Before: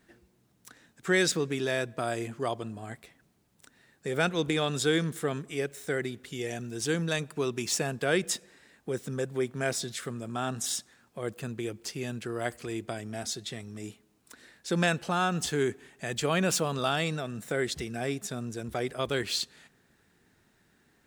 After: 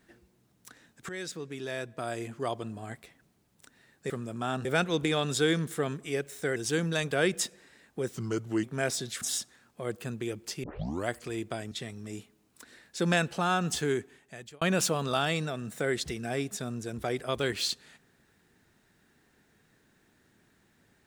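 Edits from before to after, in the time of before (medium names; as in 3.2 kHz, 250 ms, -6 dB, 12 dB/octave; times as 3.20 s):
1.09–2.74 s: fade in, from -16.5 dB
6.01–6.72 s: delete
7.27–8.01 s: delete
9.04–9.46 s: speed 85%
10.04–10.59 s: move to 4.10 s
12.01 s: tape start 0.44 s
13.09–13.42 s: delete
15.51–16.32 s: fade out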